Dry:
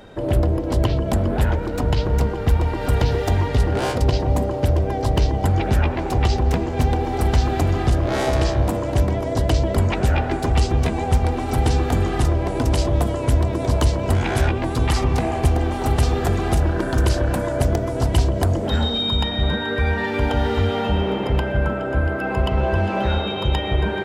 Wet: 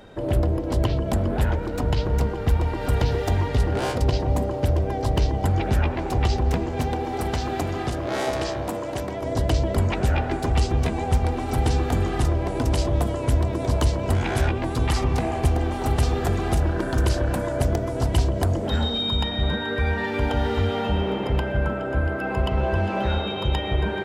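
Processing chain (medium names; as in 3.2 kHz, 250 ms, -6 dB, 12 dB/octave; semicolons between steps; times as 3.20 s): 6.77–9.21 s: high-pass 120 Hz -> 390 Hz 6 dB/octave; trim -3 dB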